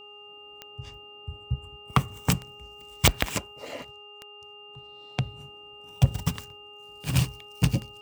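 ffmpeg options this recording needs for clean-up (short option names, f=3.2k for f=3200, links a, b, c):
-af "adeclick=t=4,bandreject=f=413.8:t=h:w=4,bandreject=f=827.6:t=h:w=4,bandreject=f=1.2414k:t=h:w=4,bandreject=f=2.8k:w=30"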